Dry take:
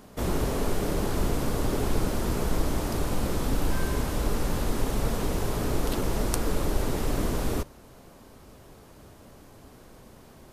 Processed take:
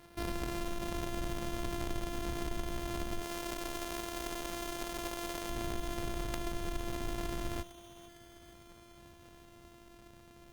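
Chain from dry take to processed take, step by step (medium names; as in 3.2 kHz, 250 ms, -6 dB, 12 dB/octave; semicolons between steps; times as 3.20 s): sorted samples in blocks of 128 samples; 3.22–5.50 s: tone controls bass -12 dB, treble +3 dB; compression 2.5:1, threshold -28 dBFS, peak gain reduction 7 dB; thinning echo 456 ms, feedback 69%, high-pass 800 Hz, level -14 dB; trim -6.5 dB; Opus 32 kbps 48 kHz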